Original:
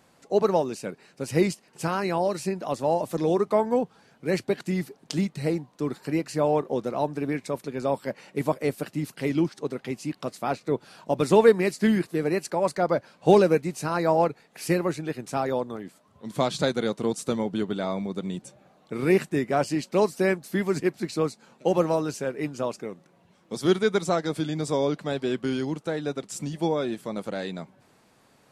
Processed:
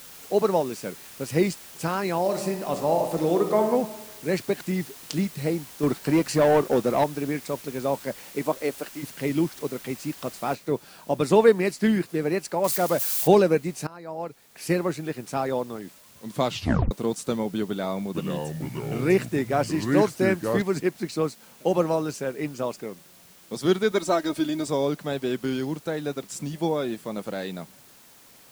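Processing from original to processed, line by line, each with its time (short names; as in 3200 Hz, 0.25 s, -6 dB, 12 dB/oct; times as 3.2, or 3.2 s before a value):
2.2–3.71 reverb throw, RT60 1.2 s, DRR 5 dB
5.83–7.04 sample leveller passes 2
8.23–9.02 HPF 150 Hz -> 420 Hz
10.55 noise floor step -45 dB -53 dB
12.64–13.28 switching spikes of -22 dBFS
13.87–14.71 fade in quadratic, from -18 dB
16.46 tape stop 0.45 s
17.69–20.62 echoes that change speed 0.455 s, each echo -4 st, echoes 2
23.91–24.67 comb 3.2 ms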